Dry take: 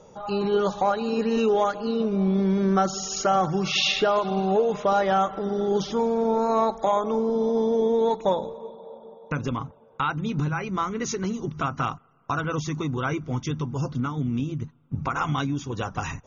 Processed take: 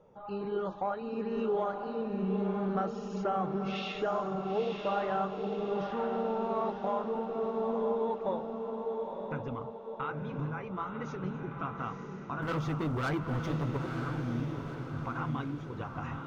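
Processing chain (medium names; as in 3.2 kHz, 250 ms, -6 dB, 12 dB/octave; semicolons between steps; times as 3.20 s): low-pass 2.3 kHz 12 dB/octave; 12.42–13.77 s: waveshaping leveller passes 3; flange 1.9 Hz, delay 5.6 ms, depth 6.1 ms, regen -68%; echo that smears into a reverb 952 ms, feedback 50%, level -5 dB; trim -6.5 dB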